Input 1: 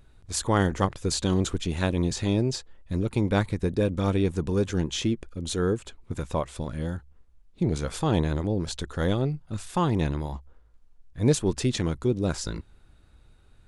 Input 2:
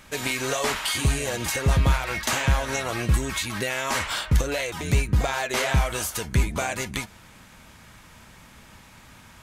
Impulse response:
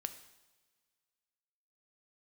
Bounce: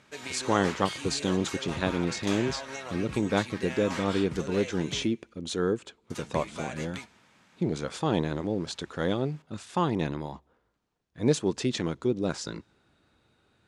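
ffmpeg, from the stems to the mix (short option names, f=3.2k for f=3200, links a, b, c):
-filter_complex "[0:a]volume=-1.5dB,asplit=2[a][b];[b]volume=-20dB[c];[1:a]volume=-14dB,asplit=3[d][e][f];[d]atrim=end=5.08,asetpts=PTS-STARTPTS,afade=t=out:st=5.076:d=0.004:c=hsin[g];[e]atrim=start=5.08:end=6.1,asetpts=PTS-STARTPTS,volume=0[h];[f]atrim=start=6.1,asetpts=PTS-STARTPTS,afade=t=in:d=0.004:c=hsin[i];[g][h][i]concat=n=3:v=0:a=1,asplit=2[j][k];[k]volume=-4dB[l];[2:a]atrim=start_sample=2205[m];[c][l]amix=inputs=2:normalize=0[n];[n][m]afir=irnorm=-1:irlink=0[o];[a][j][o]amix=inputs=3:normalize=0,highpass=170,lowpass=6.8k"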